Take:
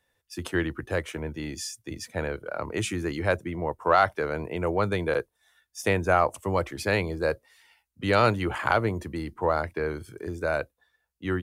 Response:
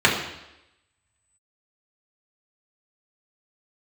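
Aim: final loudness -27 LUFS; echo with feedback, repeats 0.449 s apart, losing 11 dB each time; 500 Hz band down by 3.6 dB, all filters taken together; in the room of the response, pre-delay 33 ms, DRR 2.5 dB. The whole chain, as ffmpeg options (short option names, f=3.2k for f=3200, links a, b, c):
-filter_complex "[0:a]equalizer=f=500:t=o:g=-4.5,aecho=1:1:449|898|1347:0.282|0.0789|0.0221,asplit=2[a][b];[1:a]atrim=start_sample=2205,adelay=33[c];[b][c]afir=irnorm=-1:irlink=0,volume=-24dB[d];[a][d]amix=inputs=2:normalize=0,volume=0.5dB"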